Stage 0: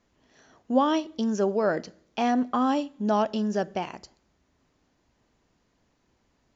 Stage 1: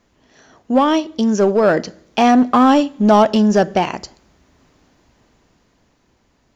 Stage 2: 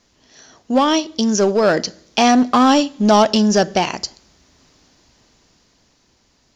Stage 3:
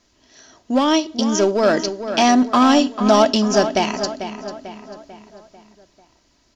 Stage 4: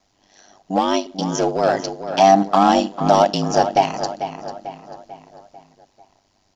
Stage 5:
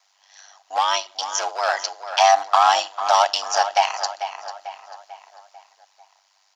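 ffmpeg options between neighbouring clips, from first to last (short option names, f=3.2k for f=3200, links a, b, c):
-filter_complex "[0:a]dynaudnorm=f=250:g=13:m=6dB,asplit=2[a][b];[b]asoftclip=type=hard:threshold=-20.5dB,volume=-4dB[c];[a][c]amix=inputs=2:normalize=0,volume=4.5dB"
-af "equalizer=f=5.2k:w=0.86:g=12,volume=-1.5dB"
-filter_complex "[0:a]aecho=1:1:3.1:0.35,asplit=2[a][b];[b]adelay=444,lowpass=f=3.9k:p=1,volume=-10dB,asplit=2[c][d];[d]adelay=444,lowpass=f=3.9k:p=1,volume=0.5,asplit=2[e][f];[f]adelay=444,lowpass=f=3.9k:p=1,volume=0.5,asplit=2[g][h];[h]adelay=444,lowpass=f=3.9k:p=1,volume=0.5,asplit=2[i][j];[j]adelay=444,lowpass=f=3.9k:p=1,volume=0.5[k];[c][e][g][i][k]amix=inputs=5:normalize=0[l];[a][l]amix=inputs=2:normalize=0,volume=-2dB"
-af "equalizer=f=760:t=o:w=0.28:g=14,aeval=exprs='val(0)*sin(2*PI*49*n/s)':c=same,volume=-1.5dB"
-af "highpass=f=870:w=0.5412,highpass=f=870:w=1.3066,volume=4dB"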